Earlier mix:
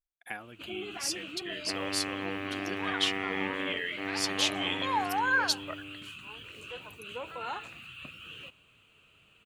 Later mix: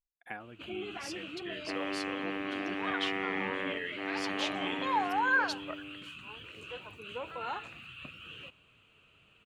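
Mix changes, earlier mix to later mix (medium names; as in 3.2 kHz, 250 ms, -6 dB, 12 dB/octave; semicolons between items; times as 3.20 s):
speech: add treble shelf 2.8 kHz -9.5 dB; second sound: add steep high-pass 200 Hz 48 dB/octave; master: add low-pass 3.9 kHz 6 dB/octave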